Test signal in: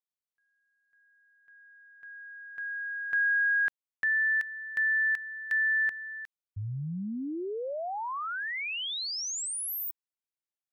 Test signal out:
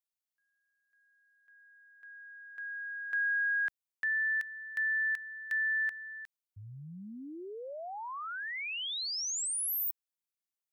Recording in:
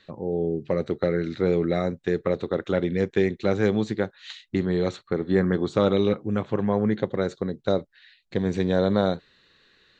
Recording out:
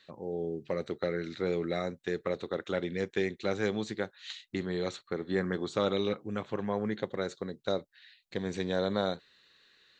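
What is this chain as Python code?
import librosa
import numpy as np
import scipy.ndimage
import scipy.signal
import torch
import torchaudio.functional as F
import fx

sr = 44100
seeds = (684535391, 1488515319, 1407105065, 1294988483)

y = fx.tilt_eq(x, sr, slope=2.0)
y = y * 10.0 ** (-6.0 / 20.0)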